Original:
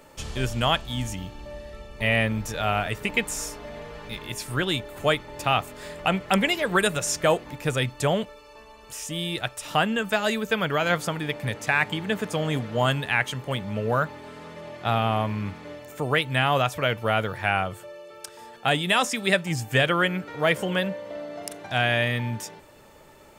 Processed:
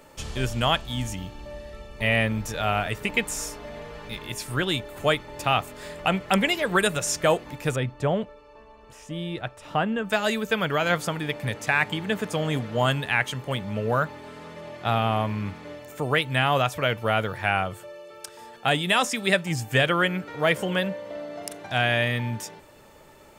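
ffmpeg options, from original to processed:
-filter_complex "[0:a]asettb=1/sr,asplit=3[a][b][c];[a]atrim=end=7.764[d];[b]atrim=start=7.76:end=10.1,asetpts=PTS-STARTPTS,afade=t=in:d=0.004:c=qsin,afade=t=out:st=2.336:d=0.004:c=qsin,lowpass=f=1.2k:p=1[e];[c]atrim=start=10.096[f];[d][e]acrossfade=d=0.004:c1=hsin:c2=qsin[g];[g][f]acrossfade=d=0.004:c1=qsin:c2=hsin"

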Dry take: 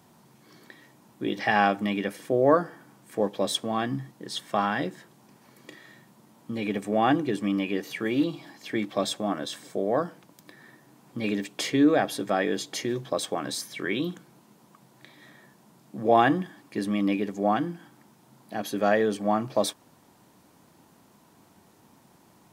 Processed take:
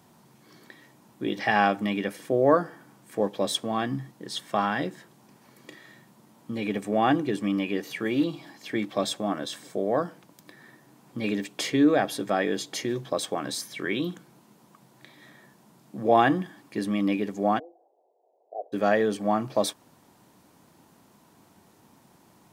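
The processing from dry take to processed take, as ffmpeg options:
-filter_complex "[0:a]asplit=3[a][b][c];[a]afade=t=out:st=17.58:d=0.02[d];[b]asuperpass=centerf=560:order=8:qfactor=1.6,afade=t=in:st=17.58:d=0.02,afade=t=out:st=18.72:d=0.02[e];[c]afade=t=in:st=18.72:d=0.02[f];[d][e][f]amix=inputs=3:normalize=0"

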